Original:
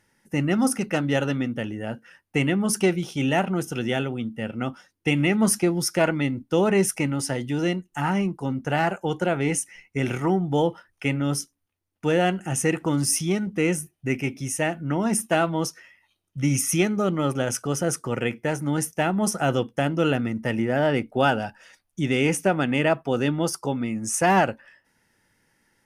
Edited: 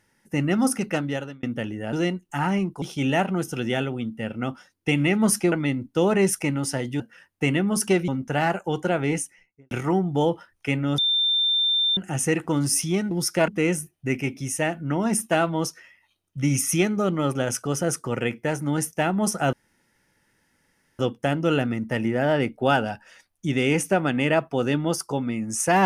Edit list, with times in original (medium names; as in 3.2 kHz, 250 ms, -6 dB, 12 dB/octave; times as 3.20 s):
0.90–1.43 s: fade out
1.93–3.01 s: swap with 7.56–8.45 s
5.71–6.08 s: move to 13.48 s
9.42–10.08 s: studio fade out
11.35–12.34 s: bleep 3.58 kHz -18.5 dBFS
19.53 s: insert room tone 1.46 s